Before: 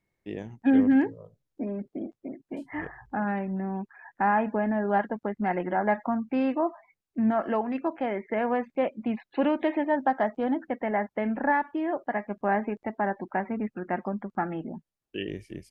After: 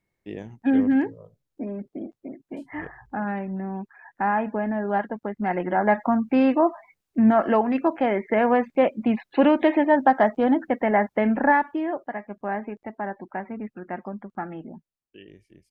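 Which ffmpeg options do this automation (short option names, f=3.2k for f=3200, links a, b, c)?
-af "volume=7dB,afade=t=in:st=5.32:d=0.94:silence=0.473151,afade=t=out:st=11.36:d=0.77:silence=0.316228,afade=t=out:st=14.75:d=0.44:silence=0.298538"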